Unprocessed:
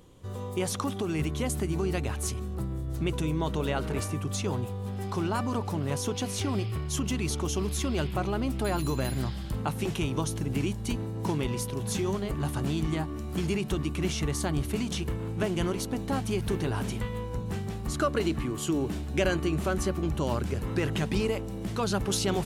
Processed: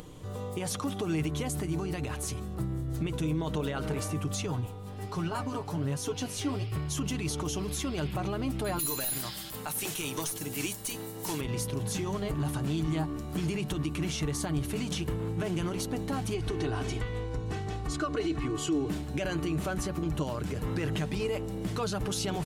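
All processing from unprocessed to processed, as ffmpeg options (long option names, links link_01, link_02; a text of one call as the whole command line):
ffmpeg -i in.wav -filter_complex "[0:a]asettb=1/sr,asplit=3[link_01][link_02][link_03];[link_01]atrim=end=4.464[link_04];[link_02]atrim=start=4.46:end=6.72,asetpts=PTS-STARTPTS,afade=type=in:duration=0.004:curve=qsin,afade=type=out:start_time=2.256:duration=0.004:curve=qsin,aecho=1:1:7.3:0.53,atrim=end_sample=99666,flanger=delay=5.5:depth=9.3:regen=53:speed=1.3:shape=sinusoidal[link_05];[link_03]atrim=start=6.716[link_06];[link_04][link_05]acrossfade=duration=0.004:curve1=hsin:curve2=qsin[link_07];[link_07][link_06]acrossfade=duration=0.004:curve1=qsin:curve2=hsin,asettb=1/sr,asplit=3[link_08][link_09][link_10];[link_08]atrim=end=8.794[link_11];[link_09]atrim=start=8.79:end=11.41,asetpts=PTS-STARTPTS,afade=type=in:duration=0.004:curve=qsin,afade=type=out:start_time=2.616:duration=0.004:curve=qsin,aemphasis=mode=production:type=riaa,aeval=exprs='clip(val(0),-1,0.0501)':channel_layout=same[link_12];[link_10]atrim=start=11.406[link_13];[link_11][link_12]acrossfade=duration=0.004:curve1=hsin:curve2=qsin[link_14];[link_14][link_13]acrossfade=duration=0.004:curve1=qsin:curve2=hsin,asettb=1/sr,asplit=3[link_15][link_16][link_17];[link_15]atrim=end=16.344[link_18];[link_16]atrim=start=16.34:end=18.89,asetpts=PTS-STARTPTS,afade=type=in:duration=0.004:curve=qsin,afade=type=out:start_time=2.546:duration=0.004:curve=qsin,lowpass=7500,aecho=1:1:2.7:0.6,atrim=end_sample=112455[link_19];[link_17]atrim=start=18.886[link_20];[link_18][link_19]acrossfade=duration=0.004:curve1=hsin:curve2=qsin[link_21];[link_21][link_20]acrossfade=duration=0.004:curve1=qsin:curve2=hsin,alimiter=limit=-23.5dB:level=0:latency=1:release=51,aecho=1:1:6.6:0.42,acompressor=mode=upward:threshold=-39dB:ratio=2.5" out.wav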